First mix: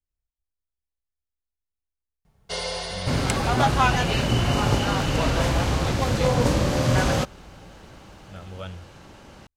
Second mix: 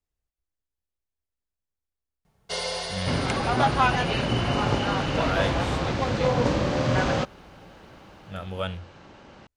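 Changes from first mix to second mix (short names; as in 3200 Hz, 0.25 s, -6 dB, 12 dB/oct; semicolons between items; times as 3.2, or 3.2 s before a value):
speech +8.0 dB; second sound: add air absorption 120 m; master: add low shelf 110 Hz -9 dB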